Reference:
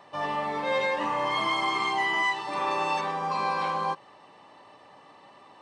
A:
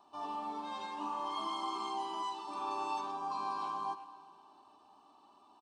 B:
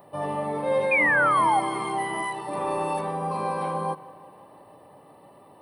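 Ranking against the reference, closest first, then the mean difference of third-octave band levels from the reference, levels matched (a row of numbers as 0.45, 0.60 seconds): A, B; 4.5, 6.0 decibels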